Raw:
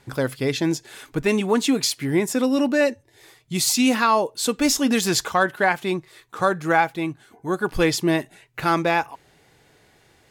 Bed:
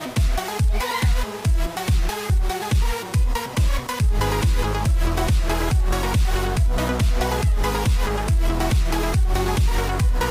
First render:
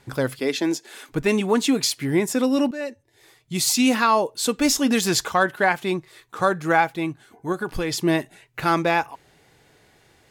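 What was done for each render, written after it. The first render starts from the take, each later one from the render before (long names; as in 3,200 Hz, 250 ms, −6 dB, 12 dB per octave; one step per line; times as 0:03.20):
0:00.39–0:01.09: high-pass filter 220 Hz 24 dB per octave
0:02.71–0:03.72: fade in, from −14 dB
0:07.52–0:08.01: downward compressor, threshold −21 dBFS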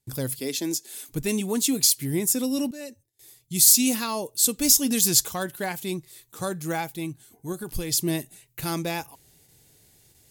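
noise gate with hold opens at −47 dBFS
drawn EQ curve 110 Hz 0 dB, 1,400 Hz −15 dB, 15,000 Hz +15 dB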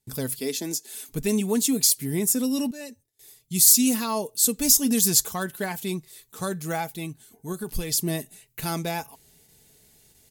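dynamic equaliser 3,100 Hz, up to −4 dB, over −36 dBFS, Q 0.93
comb filter 4.6 ms, depth 41%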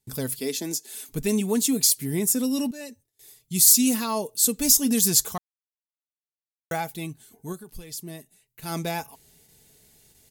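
0:05.38–0:06.71: silence
0:07.47–0:08.77: duck −11.5 dB, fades 0.16 s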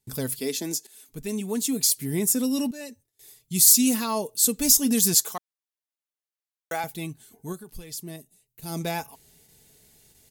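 0:00.87–0:02.21: fade in, from −14 dB
0:05.14–0:06.84: Bessel high-pass filter 380 Hz
0:08.16–0:08.81: parametric band 1,700 Hz −11 dB 1.8 octaves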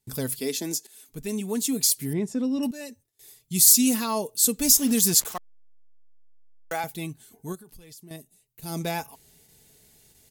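0:02.13–0:02.63: head-to-tape spacing loss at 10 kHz 26 dB
0:04.75–0:06.73: hold until the input has moved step −36.5 dBFS
0:07.55–0:08.11: downward compressor 4 to 1, threshold −45 dBFS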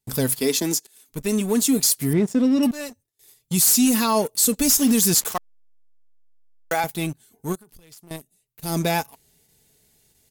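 leveller curve on the samples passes 2
brickwall limiter −10.5 dBFS, peak gain reduction 7 dB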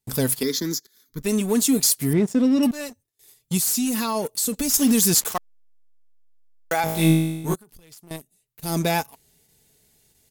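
0:00.43–0:01.22: phaser with its sweep stopped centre 2,700 Hz, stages 6
0:03.57–0:04.74: downward compressor, threshold −20 dBFS
0:06.84–0:07.54: flutter between parallel walls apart 3.2 metres, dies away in 0.95 s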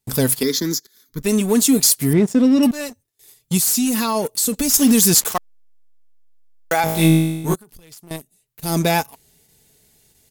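level +4.5 dB
brickwall limiter −3 dBFS, peak gain reduction 2 dB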